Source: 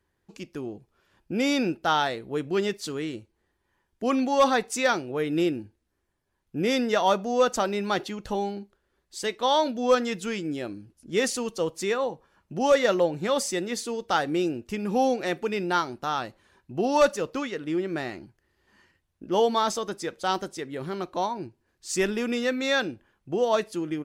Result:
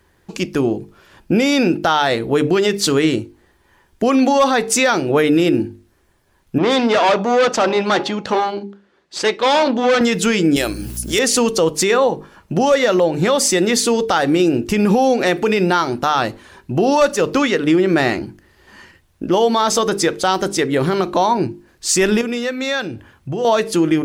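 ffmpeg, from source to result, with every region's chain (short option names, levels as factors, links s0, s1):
-filter_complex "[0:a]asettb=1/sr,asplit=3[s0][s1][s2];[s0]atrim=end=6.584[s3];[s1]atrim=start=6.58:end=10.01,asetpts=PTS-STARTPTS,afade=t=in:d=0.004:c=qsin,afade=t=out:st=3.426:d=0.004:c=qsin,bandreject=f=277.3:t=h:w=4,bandreject=f=554.6:t=h:w=4,bandreject=f=831.9:t=h:w=4,aeval=exprs='(tanh(25.1*val(0)+0.6)-tanh(0.6))/25.1':c=same,highpass=170,lowpass=5100[s4];[s2]atrim=start=10.006[s5];[s3][s4]acrossfade=d=0.004:c1=hsin:c2=qsin[s6];[s6][s5]acrossfade=d=0.004:c1=qsin:c2=hsin,asettb=1/sr,asplit=3[s7][s8][s9];[s7]atrim=end=10.564[s10];[s8]atrim=start=10.56:end=11.19,asetpts=PTS-STARTPTS,afade=t=in:d=0.004:c=qsin,afade=t=out:st=0.626:d=0.004:c=qsin,aemphasis=mode=production:type=riaa,acompressor=mode=upward:threshold=0.0141:ratio=2.5:attack=3.2:release=140:knee=2.83:detection=peak,aeval=exprs='val(0)+0.00447*(sin(2*PI*60*n/s)+sin(2*PI*2*60*n/s)/2+sin(2*PI*3*60*n/s)/3+sin(2*PI*4*60*n/s)/4+sin(2*PI*5*60*n/s)/5)':c=same[s11];[s9]atrim=start=11.186[s12];[s10][s11]acrossfade=d=0.004:c1=hsin:c2=qsin[s13];[s13][s12]acrossfade=d=0.004:c1=qsin:c2=hsin,asettb=1/sr,asplit=3[s14][s15][s16];[s14]atrim=end=22.214[s17];[s15]atrim=start=22.21:end=23.45,asetpts=PTS-STARTPTS,afade=t=in:d=0.004:c=qsin,afade=t=out:st=1.236:d=0.004:c=qsin,acompressor=threshold=0.00447:ratio=2:attack=3.2:release=140:knee=1:detection=peak,highpass=77,asubboost=boost=9:cutoff=140[s18];[s16]atrim=start=23.446[s19];[s17][s18]acrossfade=d=0.004:c1=hsin:c2=qsin[s20];[s20][s19]acrossfade=d=0.004:c1=qsin:c2=hsin,bandreject=f=50:t=h:w=6,bandreject=f=100:t=h:w=6,bandreject=f=150:t=h:w=6,bandreject=f=200:t=h:w=6,bandreject=f=250:t=h:w=6,bandreject=f=300:t=h:w=6,bandreject=f=350:t=h:w=6,bandreject=f=400:t=h:w=6,bandreject=f=450:t=h:w=6,acompressor=threshold=0.0447:ratio=5,alimiter=level_in=15:limit=0.891:release=50:level=0:latency=1,volume=0.562"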